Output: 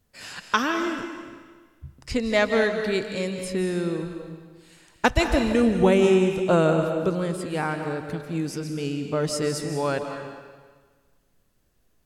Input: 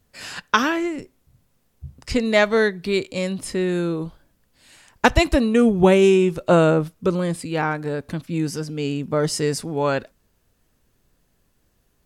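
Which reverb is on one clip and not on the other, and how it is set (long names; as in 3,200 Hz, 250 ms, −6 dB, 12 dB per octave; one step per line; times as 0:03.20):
comb and all-pass reverb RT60 1.5 s, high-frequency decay 0.95×, pre-delay 115 ms, DRR 5.5 dB
level −4.5 dB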